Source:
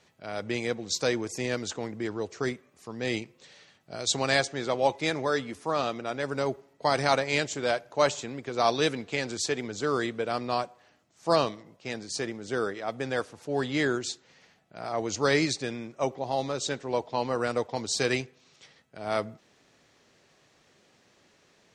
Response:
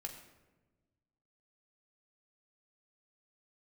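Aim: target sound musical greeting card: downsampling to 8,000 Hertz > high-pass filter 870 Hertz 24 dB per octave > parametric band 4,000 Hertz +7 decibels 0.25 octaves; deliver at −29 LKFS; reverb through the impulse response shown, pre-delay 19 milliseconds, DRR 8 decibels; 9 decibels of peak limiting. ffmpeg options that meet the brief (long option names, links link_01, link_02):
-filter_complex "[0:a]alimiter=limit=-17dB:level=0:latency=1,asplit=2[link_01][link_02];[1:a]atrim=start_sample=2205,adelay=19[link_03];[link_02][link_03]afir=irnorm=-1:irlink=0,volume=-5.5dB[link_04];[link_01][link_04]amix=inputs=2:normalize=0,aresample=8000,aresample=44100,highpass=frequency=870:width=0.5412,highpass=frequency=870:width=1.3066,equalizer=frequency=4000:width_type=o:width=0.25:gain=7,volume=7.5dB"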